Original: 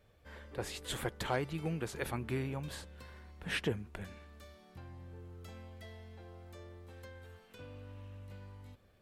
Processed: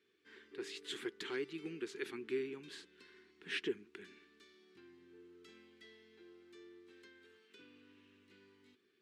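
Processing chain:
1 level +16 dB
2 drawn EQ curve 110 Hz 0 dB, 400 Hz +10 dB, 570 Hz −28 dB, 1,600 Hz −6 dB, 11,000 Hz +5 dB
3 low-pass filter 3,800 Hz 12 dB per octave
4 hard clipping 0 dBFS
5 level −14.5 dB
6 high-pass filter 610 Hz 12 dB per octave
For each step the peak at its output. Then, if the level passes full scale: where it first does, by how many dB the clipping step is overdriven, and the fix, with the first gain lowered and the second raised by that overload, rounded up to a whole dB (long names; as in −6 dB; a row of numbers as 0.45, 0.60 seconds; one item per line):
−4.0, −2.0, −2.0, −2.0, −16.5, −26.0 dBFS
no step passes full scale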